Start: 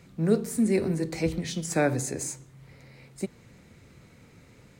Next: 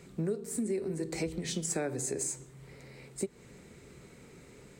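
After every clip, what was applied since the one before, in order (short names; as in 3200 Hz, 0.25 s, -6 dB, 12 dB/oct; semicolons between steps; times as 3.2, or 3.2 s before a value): thirty-one-band EQ 100 Hz -10 dB, 400 Hz +9 dB, 8000 Hz +8 dB; compressor 10:1, threshold -30 dBFS, peak gain reduction 18 dB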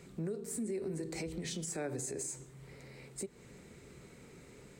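limiter -29 dBFS, peak gain reduction 7.5 dB; gain -1.5 dB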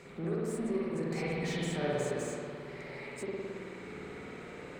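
overdrive pedal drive 14 dB, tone 2000 Hz, clips at -30.5 dBFS; spring tank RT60 2.4 s, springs 54 ms, chirp 25 ms, DRR -6.5 dB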